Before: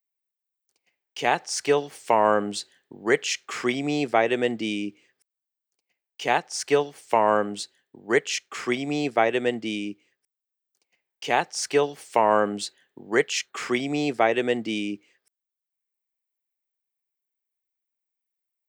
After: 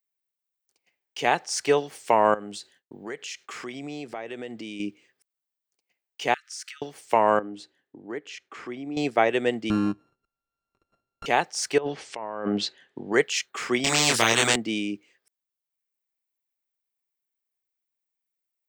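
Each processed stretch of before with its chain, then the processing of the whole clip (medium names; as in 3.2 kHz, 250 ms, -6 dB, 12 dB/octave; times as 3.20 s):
2.34–4.80 s: expander -58 dBFS + compression 3:1, threshold -36 dBFS
6.34–6.82 s: compression 4:1, threshold -35 dBFS + brick-wall FIR high-pass 1.2 kHz
7.39–8.97 s: low-pass 1.6 kHz 6 dB/octave + peaking EQ 300 Hz +8.5 dB 0.24 oct + compression 2:1, threshold -40 dBFS
9.70–11.26 s: sorted samples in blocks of 32 samples + low-pass 9.1 kHz + tilt EQ -4.5 dB/octave
11.78–13.14 s: low-pass 6 kHz + low-pass that closes with the level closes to 2.1 kHz, closed at -19 dBFS + compressor with a negative ratio -30 dBFS
13.84–14.56 s: doubling 26 ms -2 dB + spectrum-flattening compressor 4:1
whole clip: none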